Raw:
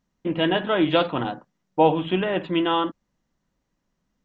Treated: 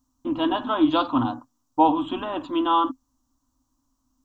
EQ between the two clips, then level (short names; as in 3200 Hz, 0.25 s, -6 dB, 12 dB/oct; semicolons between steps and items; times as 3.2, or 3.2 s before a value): EQ curve 120 Hz 0 dB, 180 Hz -29 dB, 260 Hz +10 dB, 410 Hz -18 dB, 1100 Hz +4 dB, 2000 Hz -21 dB, 3000 Hz -9 dB, 7200 Hz +7 dB; +4.0 dB